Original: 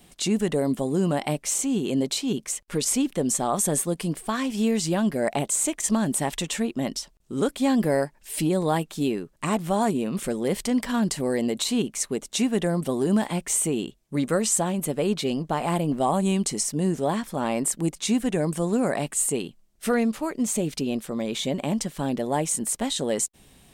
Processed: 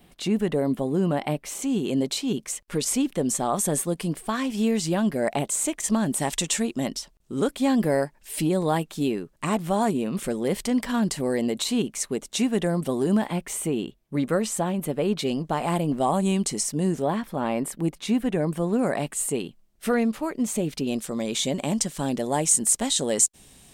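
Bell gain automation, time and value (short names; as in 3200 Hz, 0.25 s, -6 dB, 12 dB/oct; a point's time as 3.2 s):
bell 7300 Hz 1.4 oct
-10.5 dB
from 1.62 s -2 dB
from 6.2 s +7 dB
from 6.87 s -1.5 dB
from 13.17 s -8.5 dB
from 15.19 s -0.5 dB
from 17.02 s -11 dB
from 18.79 s -4 dB
from 20.87 s +7.5 dB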